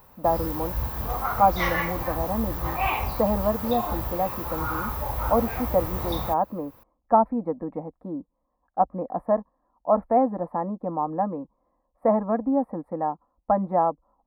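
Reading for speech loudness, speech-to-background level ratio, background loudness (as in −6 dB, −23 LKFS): −26.5 LKFS, 2.5 dB, −29.0 LKFS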